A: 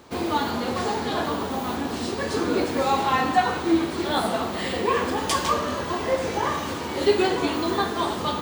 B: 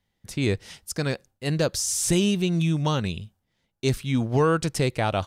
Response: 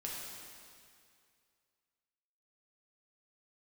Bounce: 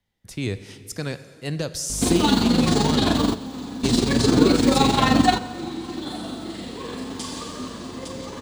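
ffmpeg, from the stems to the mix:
-filter_complex "[0:a]equalizer=frequency=125:width_type=o:width=1:gain=10,equalizer=frequency=250:width_type=o:width=1:gain=11,equalizer=frequency=4000:width_type=o:width=1:gain=9,equalizer=frequency=8000:width_type=o:width=1:gain=10,tremolo=f=23:d=0.621,aeval=exprs='val(0)+0.0224*(sin(2*PI*50*n/s)+sin(2*PI*2*50*n/s)/2+sin(2*PI*3*50*n/s)/3+sin(2*PI*4*50*n/s)/4+sin(2*PI*5*50*n/s)/5)':channel_layout=same,adelay=1900,volume=0.5dB,asplit=3[link_01][link_02][link_03];[link_02]volume=-14dB[link_04];[link_03]volume=-22.5dB[link_05];[1:a]acrossover=split=180|3000[link_06][link_07][link_08];[link_07]acompressor=threshold=-23dB:ratio=6[link_09];[link_06][link_09][link_08]amix=inputs=3:normalize=0,volume=-3.5dB,asplit=3[link_10][link_11][link_12];[link_11]volume=-10dB[link_13];[link_12]apad=whole_len=455049[link_14];[link_01][link_14]sidechaingate=range=-33dB:threshold=-48dB:ratio=16:detection=peak[link_15];[2:a]atrim=start_sample=2205[link_16];[link_04][link_13]amix=inputs=2:normalize=0[link_17];[link_17][link_16]afir=irnorm=-1:irlink=0[link_18];[link_05]aecho=0:1:859:1[link_19];[link_15][link_10][link_18][link_19]amix=inputs=4:normalize=0"

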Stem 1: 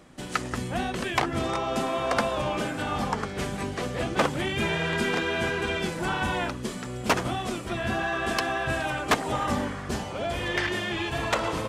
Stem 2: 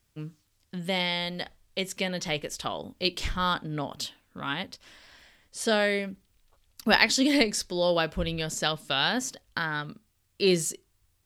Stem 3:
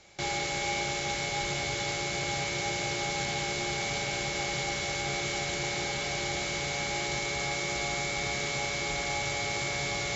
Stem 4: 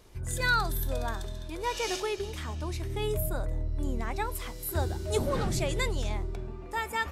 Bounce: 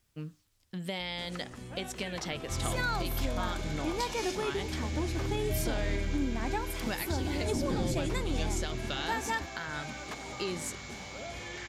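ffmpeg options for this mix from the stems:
ffmpeg -i stem1.wav -i stem2.wav -i stem3.wav -i stem4.wav -filter_complex "[0:a]alimiter=limit=-22.5dB:level=0:latency=1:release=69,aeval=exprs='val(0)+0.01*(sin(2*PI*60*n/s)+sin(2*PI*2*60*n/s)/2+sin(2*PI*3*60*n/s)/3+sin(2*PI*4*60*n/s)/4+sin(2*PI*5*60*n/s)/5)':channel_layout=same,adelay=1000,volume=-12dB[link_01];[1:a]acompressor=threshold=-31dB:ratio=6,volume=-2dB[link_02];[2:a]highpass=1000,adelay=2300,volume=-13dB[link_03];[3:a]equalizer=frequency=290:width=1.5:gain=13.5,aecho=1:1:1.2:0.32,adelay=2350,volume=-2.5dB[link_04];[link_01][link_02][link_03][link_04]amix=inputs=4:normalize=0,alimiter=limit=-21dB:level=0:latency=1:release=292" out.wav

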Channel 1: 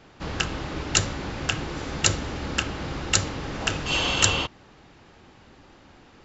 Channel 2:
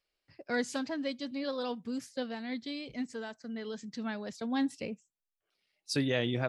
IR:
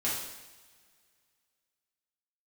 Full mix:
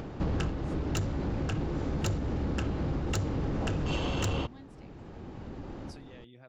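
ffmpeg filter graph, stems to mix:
-filter_complex "[0:a]tiltshelf=frequency=920:gain=9,acompressor=mode=upward:threshold=-38dB:ratio=2.5,asoftclip=type=tanh:threshold=-16.5dB,volume=3dB[link_01];[1:a]acompressor=threshold=-42dB:ratio=2,volume=-14dB,asplit=2[link_02][link_03];[link_03]apad=whole_len=275368[link_04];[link_01][link_04]sidechaincompress=threshold=-57dB:ratio=5:attack=34:release=1310[link_05];[link_05][link_02]amix=inputs=2:normalize=0,acompressor=threshold=-28dB:ratio=4"

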